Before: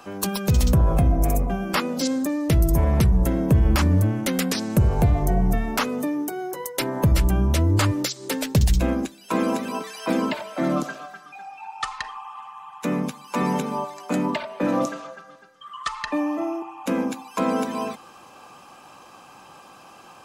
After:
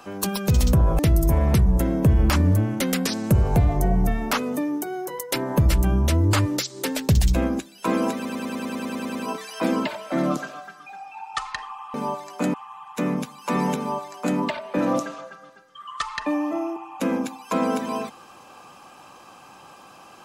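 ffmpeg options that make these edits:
-filter_complex "[0:a]asplit=14[s0][s1][s2][s3][s4][s5][s6][s7][s8][s9][s10][s11][s12][s13];[s0]atrim=end=0.992[s14];[s1]atrim=start=2.448:end=9.712[s15];[s2]atrim=start=9.608:end=9.712[s16];[s3]atrim=start=9.608:end=9.712[s17];[s4]atrim=start=9.608:end=9.712[s18];[s5]atrim=start=9.608:end=9.712[s19];[s6]atrim=start=9.608:end=9.712[s20];[s7]atrim=start=9.608:end=9.712[s21];[s8]atrim=start=9.608:end=9.712[s22];[s9]atrim=start=9.608:end=9.712[s23];[s10]atrim=start=9.608:end=9.712[s24];[s11]atrim=start=9.608:end=12.402[s25];[s12]atrim=start=13.638:end=14.242[s26];[s13]atrim=start=12.398[s27];[s14][s15]acrossfade=d=0.004:c1=hsin:c2=hsin[s28];[s28][s16]acrossfade=d=0.004:c1=hsin:c2=hsin[s29];[s29][s17]acrossfade=d=0.004:c1=hsin:c2=hsin[s30];[s30][s18]acrossfade=d=0.004:c1=hsin:c2=hsin[s31];[s31][s19]acrossfade=d=0.004:c1=hsin:c2=hsin[s32];[s32][s20]acrossfade=d=0.004:c1=hsin:c2=hsin[s33];[s33][s21]acrossfade=d=0.004:c1=hsin:c2=hsin[s34];[s34][s22]acrossfade=d=0.004:c1=hsin:c2=hsin[s35];[s35][s23]acrossfade=d=0.004:c1=hsin:c2=hsin[s36];[s36][s24]acrossfade=d=0.004:c1=hsin:c2=hsin[s37];[s37][s25]acrossfade=d=0.004:c1=hsin:c2=hsin[s38];[s38][s26]acrossfade=d=0.004:c1=hsin:c2=hsin[s39];[s39][s27]acrossfade=d=0.004:c1=hsin:c2=hsin"

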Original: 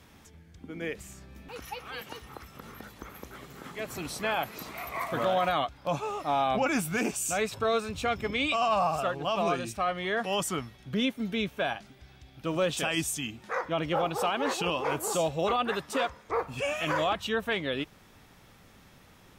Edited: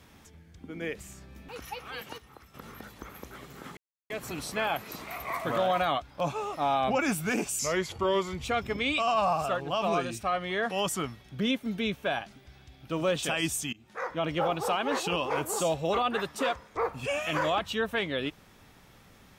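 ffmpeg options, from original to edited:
-filter_complex "[0:a]asplit=7[s0][s1][s2][s3][s4][s5][s6];[s0]atrim=end=2.182[s7];[s1]atrim=start=2.178:end=2.542,asetpts=PTS-STARTPTS,volume=0.422[s8];[s2]atrim=start=2.538:end=3.77,asetpts=PTS-STARTPTS,afade=t=out:st=1.228:d=0.004:c=hsin,apad=pad_dur=0.33[s9];[s3]atrim=start=3.77:end=7.264,asetpts=PTS-STARTPTS,afade=t=in:d=0.004:c=hsin[s10];[s4]atrim=start=7.26:end=7.99,asetpts=PTS-STARTPTS,asetrate=37485,aresample=44100,atrim=end_sample=37874,asetpts=PTS-STARTPTS[s11];[s5]atrim=start=7.986:end=13.27,asetpts=PTS-STARTPTS,afade=t=out:st=5.28:d=0.004:c=hsin:silence=0.0794328[s12];[s6]atrim=start=13.27,asetpts=PTS-STARTPTS,afade=t=in:d=0.63:c=qsin:silence=0.0794328[s13];[s7][s8]acrossfade=d=0.004:c1=hsin:c2=hsin[s14];[s9][s10]concat=n=2:v=0:a=1[s15];[s14][s15]acrossfade=d=0.004:c1=hsin:c2=hsin[s16];[s16][s11]acrossfade=d=0.004:c1=hsin:c2=hsin[s17];[s12][s13]concat=n=2:v=0:a=1[s18];[s17][s18]acrossfade=d=0.004:c1=hsin:c2=hsin"

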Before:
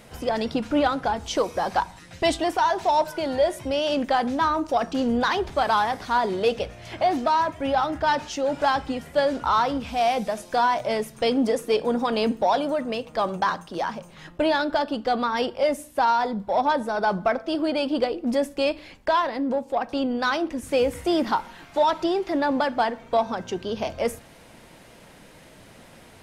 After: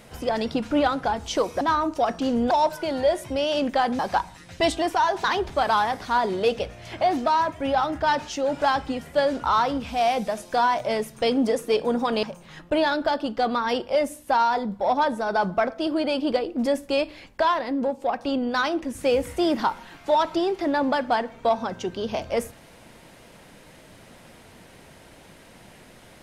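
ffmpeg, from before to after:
-filter_complex "[0:a]asplit=6[s0][s1][s2][s3][s4][s5];[s0]atrim=end=1.612[s6];[s1]atrim=start=4.338:end=5.242[s7];[s2]atrim=start=2.858:end=4.342[s8];[s3]atrim=start=1.608:end=2.862[s9];[s4]atrim=start=5.238:end=12.232[s10];[s5]atrim=start=13.908[s11];[s6][s7]acrossfade=d=0.004:c1=hsin:c2=hsin[s12];[s12][s8]acrossfade=d=0.004:c1=hsin:c2=hsin[s13];[s13][s9]acrossfade=d=0.004:c1=hsin:c2=hsin[s14];[s14][s10]acrossfade=d=0.004:c1=hsin:c2=hsin[s15];[s15][s11]acrossfade=d=0.004:c1=hsin:c2=hsin"

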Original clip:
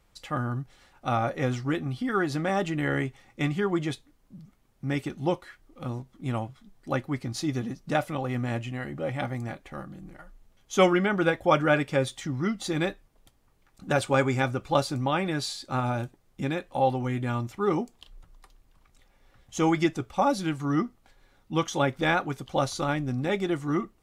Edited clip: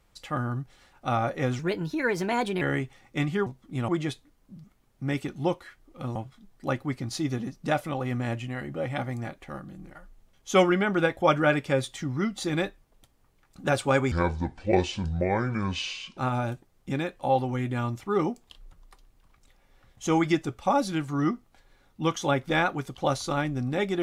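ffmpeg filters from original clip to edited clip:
-filter_complex "[0:a]asplit=8[s0][s1][s2][s3][s4][s5][s6][s7];[s0]atrim=end=1.594[s8];[s1]atrim=start=1.59:end=2.85,asetpts=PTS-STARTPTS,asetrate=54243,aresample=44100[s9];[s2]atrim=start=2.846:end=3.702[s10];[s3]atrim=start=5.968:end=6.392[s11];[s4]atrim=start=3.698:end=5.972[s12];[s5]atrim=start=6.388:end=14.354[s13];[s6]atrim=start=14.35:end=15.69,asetpts=PTS-STARTPTS,asetrate=28665,aresample=44100[s14];[s7]atrim=start=15.686[s15];[s8][s9]acrossfade=d=0.004:c1=hsin:c2=hsin[s16];[s16][s10]acrossfade=d=0.004:c1=hsin:c2=hsin[s17];[s17][s11]acrossfade=d=0.004:c1=hsin:c2=hsin[s18];[s18][s12]acrossfade=d=0.004:c1=hsin:c2=hsin[s19];[s19][s13]acrossfade=d=0.004:c1=hsin:c2=hsin[s20];[s20][s14]acrossfade=d=0.004:c1=hsin:c2=hsin[s21];[s21][s15]acrossfade=d=0.004:c1=hsin:c2=hsin"

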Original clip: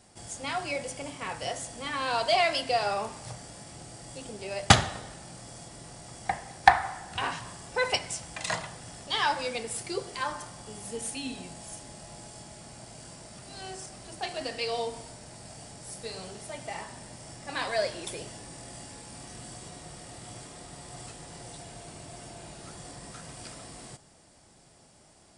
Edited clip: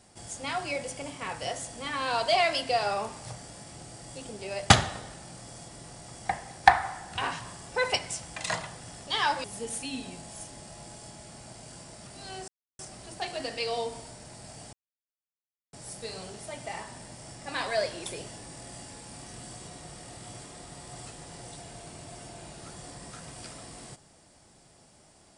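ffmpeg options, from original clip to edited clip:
-filter_complex "[0:a]asplit=4[s0][s1][s2][s3];[s0]atrim=end=9.442[s4];[s1]atrim=start=10.758:end=13.8,asetpts=PTS-STARTPTS,afade=t=out:st=3.038:d=0.004:c=hsin,apad=pad_dur=0.31[s5];[s2]atrim=start=13.8:end=15.74,asetpts=PTS-STARTPTS,afade=t=in:d=0.004:c=hsin,afade=t=out:st=1.936:d=0.004:c=hsin,apad=pad_dur=1[s6];[s3]atrim=start=15.74,asetpts=PTS-STARTPTS,afade=t=in:d=0.004:c=hsin[s7];[s5][s6][s7]concat=n=3:v=0:a=1[s8];[s4][s8]acrossfade=d=0.004:c1=hsin:c2=hsin"

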